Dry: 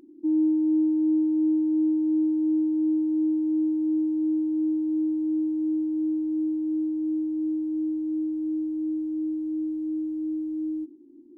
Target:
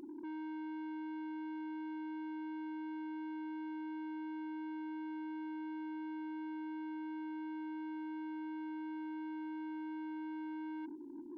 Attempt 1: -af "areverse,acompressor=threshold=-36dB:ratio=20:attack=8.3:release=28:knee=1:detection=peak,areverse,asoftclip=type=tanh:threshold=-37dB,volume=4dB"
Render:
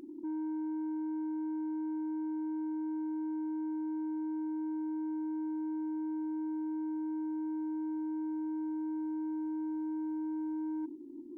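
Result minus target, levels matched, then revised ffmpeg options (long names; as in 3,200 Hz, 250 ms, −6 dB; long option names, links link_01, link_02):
soft clipping: distortion −8 dB
-af "areverse,acompressor=threshold=-36dB:ratio=20:attack=8.3:release=28:knee=1:detection=peak,areverse,asoftclip=type=tanh:threshold=-46dB,volume=4dB"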